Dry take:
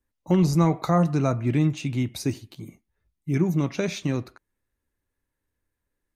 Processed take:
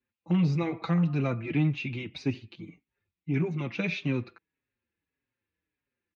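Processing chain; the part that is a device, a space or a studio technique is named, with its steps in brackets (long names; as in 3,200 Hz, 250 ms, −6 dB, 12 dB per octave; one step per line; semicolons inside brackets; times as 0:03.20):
barber-pole flanger into a guitar amplifier (barber-pole flanger 5.1 ms −1.7 Hz; soft clipping −16.5 dBFS, distortion −19 dB; loudspeaker in its box 110–4,200 Hz, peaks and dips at 650 Hz −7 dB, 1,000 Hz −3 dB, 2,500 Hz +9 dB)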